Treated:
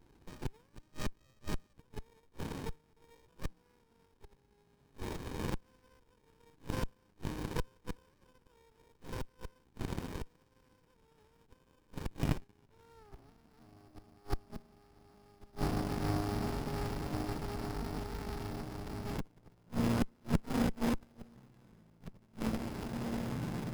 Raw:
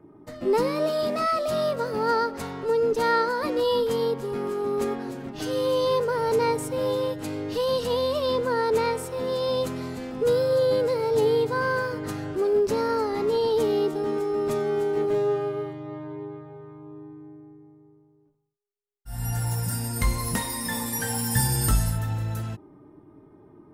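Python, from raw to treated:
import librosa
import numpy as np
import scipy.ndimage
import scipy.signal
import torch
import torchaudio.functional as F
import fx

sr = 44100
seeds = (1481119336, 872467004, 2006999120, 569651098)

p1 = fx.rattle_buzz(x, sr, strikes_db=-33.0, level_db=-23.0)
p2 = fx.tilt_eq(p1, sr, slope=-3.0, at=(3.45, 4.63))
p3 = p2 + fx.echo_diffused(p2, sr, ms=1912, feedback_pct=68, wet_db=-13, dry=0)
p4 = fx.sample_hold(p3, sr, seeds[0], rate_hz=5100.0, jitter_pct=0)
p5 = fx.gate_flip(p4, sr, shuts_db=-18.0, range_db=-34)
p6 = fx.filter_sweep_highpass(p5, sr, from_hz=3800.0, to_hz=200.0, start_s=12.16, end_s=13.37, q=2.6)
y = fx.running_max(p6, sr, window=65)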